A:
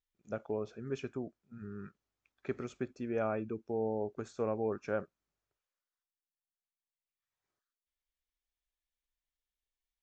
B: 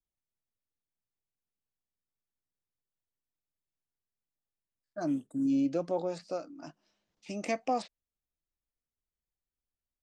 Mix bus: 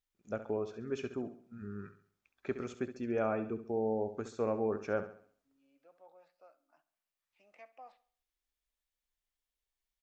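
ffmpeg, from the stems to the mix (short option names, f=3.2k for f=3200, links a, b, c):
-filter_complex "[0:a]equalizer=f=140:t=o:w=0.28:g=-8,volume=1dB,asplit=3[a][b][c];[b]volume=-11.5dB[d];[1:a]acrossover=split=600 3000:gain=0.0708 1 0.0708[e][f][g];[e][f][g]amix=inputs=3:normalize=0,adelay=100,volume=-18dB,asplit=2[h][i];[i]volume=-17.5dB[j];[c]apad=whole_len=446489[k];[h][k]sidechaincompress=threshold=-40dB:ratio=8:attack=5:release=1290[l];[d][j]amix=inputs=2:normalize=0,aecho=0:1:68|136|204|272|340|408:1|0.4|0.16|0.064|0.0256|0.0102[m];[a][l][m]amix=inputs=3:normalize=0"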